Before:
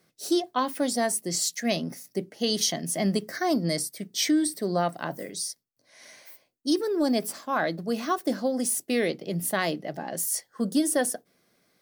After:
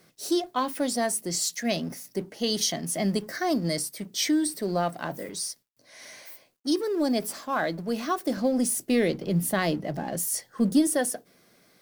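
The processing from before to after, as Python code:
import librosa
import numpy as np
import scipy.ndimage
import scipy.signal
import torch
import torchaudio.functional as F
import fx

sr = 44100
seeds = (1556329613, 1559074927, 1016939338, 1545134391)

y = fx.law_mismatch(x, sr, coded='mu')
y = fx.low_shelf(y, sr, hz=250.0, db=9.5, at=(8.37, 10.87))
y = y * librosa.db_to_amplitude(-1.5)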